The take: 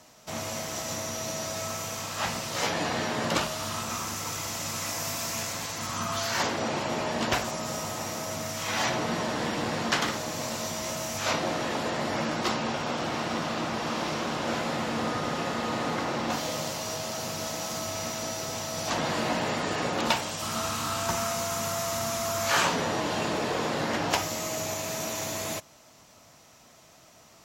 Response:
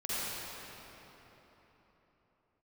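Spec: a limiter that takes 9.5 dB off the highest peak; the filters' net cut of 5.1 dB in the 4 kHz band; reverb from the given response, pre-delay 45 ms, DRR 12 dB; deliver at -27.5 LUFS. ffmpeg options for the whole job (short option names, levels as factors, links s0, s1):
-filter_complex "[0:a]equalizer=f=4000:t=o:g=-7,alimiter=limit=0.0891:level=0:latency=1,asplit=2[s0][s1];[1:a]atrim=start_sample=2205,adelay=45[s2];[s1][s2]afir=irnorm=-1:irlink=0,volume=0.112[s3];[s0][s3]amix=inputs=2:normalize=0,volume=1.58"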